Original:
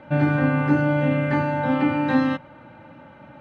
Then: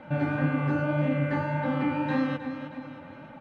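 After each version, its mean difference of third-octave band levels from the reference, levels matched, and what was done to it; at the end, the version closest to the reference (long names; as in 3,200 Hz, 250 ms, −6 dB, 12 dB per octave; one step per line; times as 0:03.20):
3.0 dB: repeating echo 313 ms, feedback 39%, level −12 dB
flanger 1.8 Hz, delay 3.4 ms, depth 8.7 ms, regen +31%
in parallel at +3 dB: downward compressor, threshold −37 dBFS, peak gain reduction 18 dB
on the sum: level −5 dB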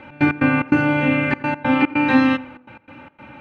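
4.0 dB: thirty-one-band graphic EQ 160 Hz −12 dB, 630 Hz −9 dB, 2,500 Hz +11 dB
gate pattern "x.x.xx.xxxxx" 146 BPM −24 dB
tape delay 86 ms, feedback 47%, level −17 dB, low-pass 1,400 Hz
level +5.5 dB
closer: first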